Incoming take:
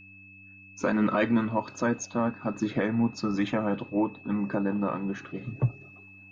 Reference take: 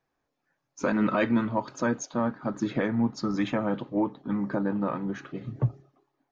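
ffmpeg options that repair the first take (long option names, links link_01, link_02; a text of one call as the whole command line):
ffmpeg -i in.wav -af "bandreject=frequency=96.8:width_type=h:width=4,bandreject=frequency=193.6:width_type=h:width=4,bandreject=frequency=290.4:width_type=h:width=4,bandreject=frequency=2600:width=30,asetnsamples=nb_out_samples=441:pad=0,asendcmd='5.81 volume volume -7dB',volume=0dB" out.wav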